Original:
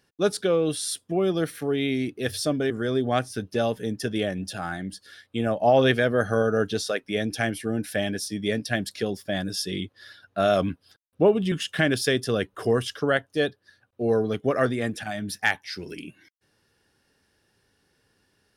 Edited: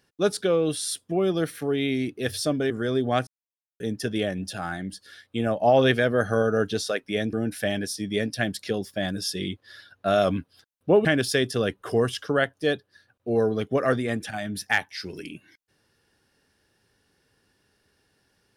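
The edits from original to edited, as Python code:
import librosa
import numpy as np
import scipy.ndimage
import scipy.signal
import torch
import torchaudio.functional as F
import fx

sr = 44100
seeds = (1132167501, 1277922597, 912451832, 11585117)

y = fx.edit(x, sr, fx.silence(start_s=3.27, length_s=0.53),
    fx.cut(start_s=7.33, length_s=0.32),
    fx.cut(start_s=11.37, length_s=0.41), tone=tone)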